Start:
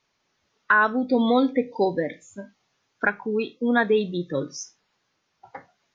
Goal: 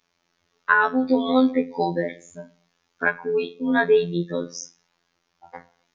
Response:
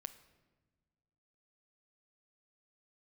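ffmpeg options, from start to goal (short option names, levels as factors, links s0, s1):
-filter_complex "[0:a]asplit=2[s0][s1];[1:a]atrim=start_sample=2205,afade=t=out:st=0.3:d=0.01,atrim=end_sample=13671[s2];[s1][s2]afir=irnorm=-1:irlink=0,volume=1.06[s3];[s0][s3]amix=inputs=2:normalize=0,afftfilt=real='hypot(re,im)*cos(PI*b)':imag='0':win_size=2048:overlap=0.75"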